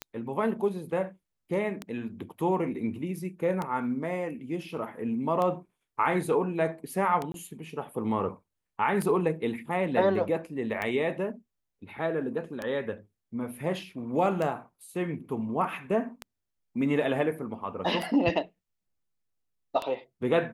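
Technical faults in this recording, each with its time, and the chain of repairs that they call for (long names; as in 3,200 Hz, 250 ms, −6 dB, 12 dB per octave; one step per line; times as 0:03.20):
scratch tick 33 1/3 rpm −18 dBFS
0:07.32–0:07.34: drop-out 22 ms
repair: click removal
repair the gap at 0:07.32, 22 ms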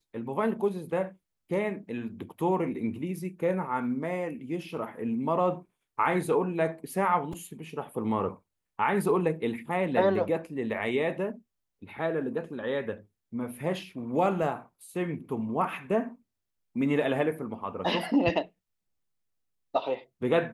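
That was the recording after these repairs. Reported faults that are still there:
none of them is left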